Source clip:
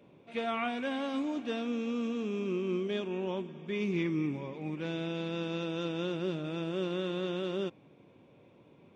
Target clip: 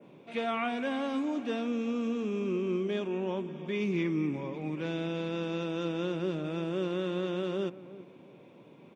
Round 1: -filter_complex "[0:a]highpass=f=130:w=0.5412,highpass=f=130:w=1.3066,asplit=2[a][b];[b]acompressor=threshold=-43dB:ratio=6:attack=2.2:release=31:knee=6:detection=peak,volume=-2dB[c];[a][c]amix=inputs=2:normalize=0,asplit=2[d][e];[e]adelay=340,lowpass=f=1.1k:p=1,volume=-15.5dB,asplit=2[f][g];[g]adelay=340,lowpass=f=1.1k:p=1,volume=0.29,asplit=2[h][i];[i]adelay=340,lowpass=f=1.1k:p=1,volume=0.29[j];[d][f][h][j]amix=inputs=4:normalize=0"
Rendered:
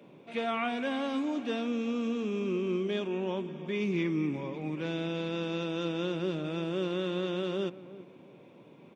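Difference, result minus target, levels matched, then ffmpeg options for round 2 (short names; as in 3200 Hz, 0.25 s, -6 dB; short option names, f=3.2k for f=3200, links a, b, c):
4000 Hz band +2.5 dB
-filter_complex "[0:a]highpass=f=130:w=0.5412,highpass=f=130:w=1.3066,adynamicequalizer=threshold=0.00158:dfrequency=3700:dqfactor=1.2:tfrequency=3700:tqfactor=1.2:attack=5:release=100:ratio=0.375:range=2:mode=cutabove:tftype=bell,asplit=2[a][b];[b]acompressor=threshold=-43dB:ratio=6:attack=2.2:release=31:knee=6:detection=peak,volume=-2dB[c];[a][c]amix=inputs=2:normalize=0,asplit=2[d][e];[e]adelay=340,lowpass=f=1.1k:p=1,volume=-15.5dB,asplit=2[f][g];[g]adelay=340,lowpass=f=1.1k:p=1,volume=0.29,asplit=2[h][i];[i]adelay=340,lowpass=f=1.1k:p=1,volume=0.29[j];[d][f][h][j]amix=inputs=4:normalize=0"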